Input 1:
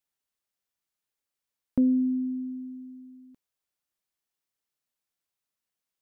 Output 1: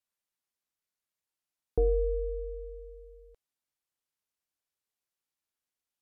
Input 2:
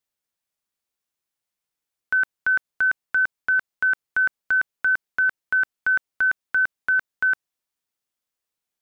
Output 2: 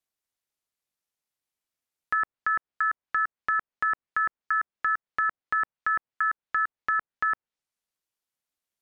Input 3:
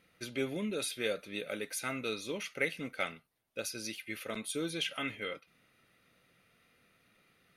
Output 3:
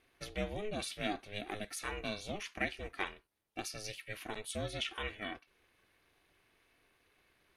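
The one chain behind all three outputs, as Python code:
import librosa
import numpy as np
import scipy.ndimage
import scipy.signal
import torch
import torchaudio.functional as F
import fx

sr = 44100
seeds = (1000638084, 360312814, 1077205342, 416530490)

y = x * np.sin(2.0 * np.pi * 210.0 * np.arange(len(x)) / sr)
y = fx.env_lowpass_down(y, sr, base_hz=1600.0, full_db=-23.0)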